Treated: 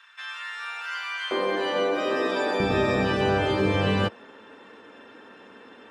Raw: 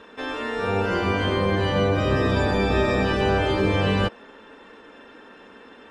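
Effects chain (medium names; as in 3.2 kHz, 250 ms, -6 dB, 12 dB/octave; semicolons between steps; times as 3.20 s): high-pass 1.3 kHz 24 dB/octave, from 1.31 s 290 Hz, from 2.60 s 86 Hz; trim -1.5 dB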